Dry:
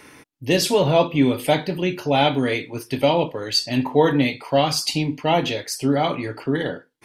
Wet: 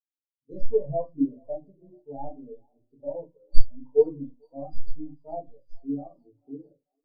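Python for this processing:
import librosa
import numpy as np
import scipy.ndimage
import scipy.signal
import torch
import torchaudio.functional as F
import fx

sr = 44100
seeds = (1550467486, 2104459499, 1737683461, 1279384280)

y = fx.tracing_dist(x, sr, depth_ms=0.098)
y = scipy.signal.sosfilt(scipy.signal.cheby1(2, 1.0, [1200.0, 4300.0], 'bandstop', fs=sr, output='sos'), y)
y = fx.vibrato(y, sr, rate_hz=2.4, depth_cents=12.0)
y = fx.comb_fb(y, sr, f0_hz=190.0, decay_s=1.6, harmonics='all', damping=0.0, mix_pct=50)
y = fx.echo_thinned(y, sr, ms=441, feedback_pct=79, hz=540.0, wet_db=-11.5)
y = fx.room_shoebox(y, sr, seeds[0], volume_m3=160.0, walls='furnished', distance_m=1.5)
y = fx.spectral_expand(y, sr, expansion=2.5)
y = y * 10.0 ** (4.0 / 20.0)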